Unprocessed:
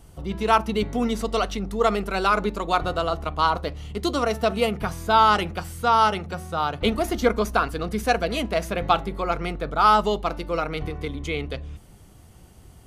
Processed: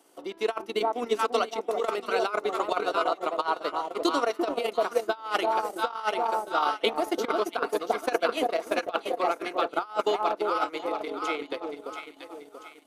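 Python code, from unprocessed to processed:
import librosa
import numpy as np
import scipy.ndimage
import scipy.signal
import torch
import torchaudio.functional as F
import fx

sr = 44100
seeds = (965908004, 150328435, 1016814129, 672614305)

y = scipy.signal.sosfilt(scipy.signal.cheby1(4, 1.0, 290.0, 'highpass', fs=sr, output='sos'), x)
y = fx.echo_alternate(y, sr, ms=342, hz=870.0, feedback_pct=64, wet_db=-2.5)
y = fx.over_compress(y, sr, threshold_db=-21.0, ratio=-0.5)
y = fx.transient(y, sr, attack_db=6, sustain_db=-11)
y = y * librosa.db_to_amplitude(-5.0)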